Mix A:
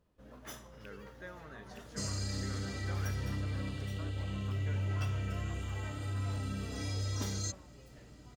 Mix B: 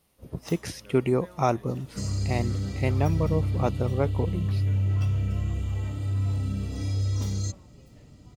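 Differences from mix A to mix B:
speech: unmuted; second sound: add low shelf 310 Hz +11 dB; master: add bell 1600 Hz -8.5 dB 0.38 oct

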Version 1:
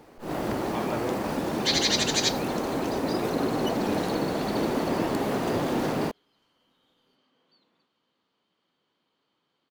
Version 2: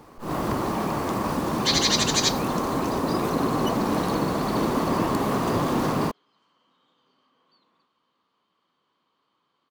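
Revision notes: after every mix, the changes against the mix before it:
speech: muted; first sound: add tone controls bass +6 dB, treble +4 dB; master: add bell 1100 Hz +11 dB 0.41 oct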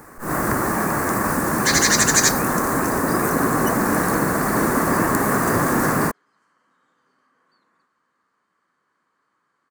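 first sound +3.5 dB; master: add EQ curve 1000 Hz 0 dB, 1700 Hz +12 dB, 3200 Hz -12 dB, 8200 Hz +12 dB

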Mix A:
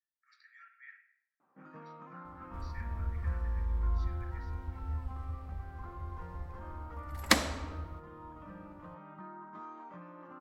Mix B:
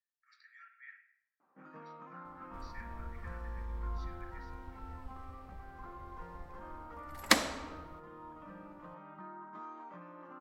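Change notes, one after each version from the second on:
master: add bell 79 Hz -14 dB 1.3 oct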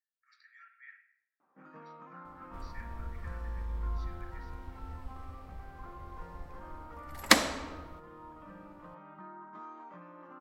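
second sound +4.0 dB

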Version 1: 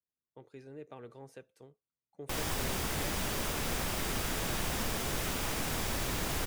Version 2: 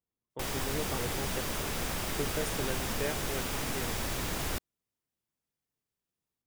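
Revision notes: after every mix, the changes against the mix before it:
speech +9.5 dB; background: entry -1.90 s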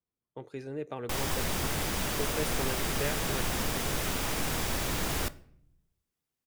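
background: entry +0.70 s; reverb: on, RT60 0.65 s

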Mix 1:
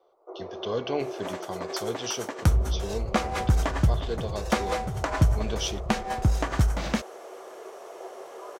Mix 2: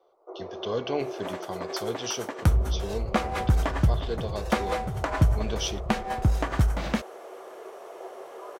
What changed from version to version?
second sound: add bell 6300 Hz -5.5 dB 1.1 oct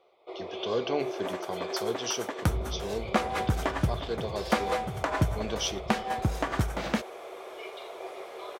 first sound: remove Chebyshev band-pass 310–1500 Hz, order 4; master: add HPF 160 Hz 6 dB/oct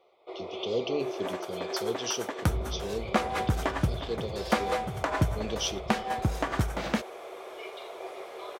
speech: add brick-wall FIR band-stop 580–2300 Hz

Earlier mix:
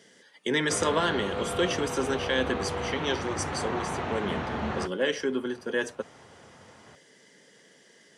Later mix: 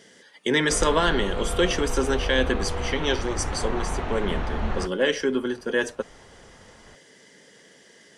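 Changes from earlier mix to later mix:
speech +4.5 dB; master: remove HPF 92 Hz 24 dB/oct

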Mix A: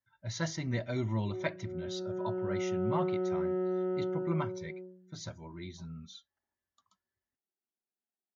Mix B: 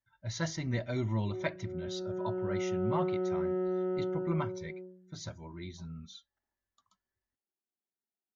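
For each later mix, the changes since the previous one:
speech: remove HPF 76 Hz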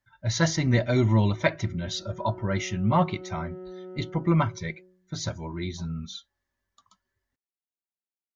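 speech +11.0 dB; background -8.5 dB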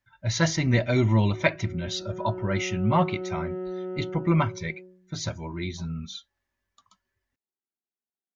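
background +7.5 dB; master: add bell 2500 Hz +6.5 dB 0.39 oct

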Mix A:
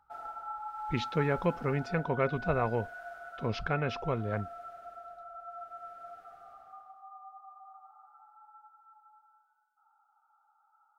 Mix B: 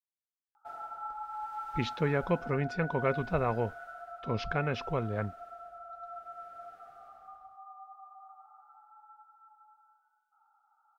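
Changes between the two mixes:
speech: entry +0.85 s; background: entry +0.55 s

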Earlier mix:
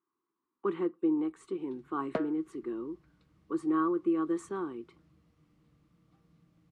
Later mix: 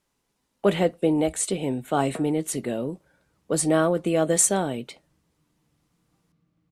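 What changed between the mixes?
speech: remove double band-pass 620 Hz, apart 1.7 oct; background -4.0 dB

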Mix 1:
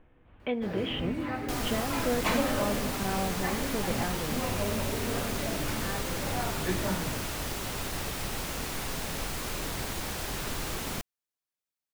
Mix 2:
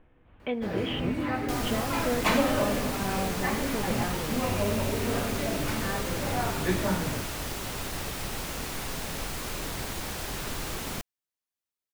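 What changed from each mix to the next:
first sound +4.0 dB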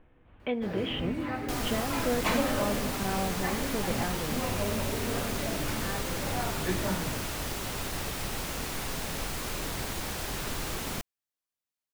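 first sound -4.0 dB

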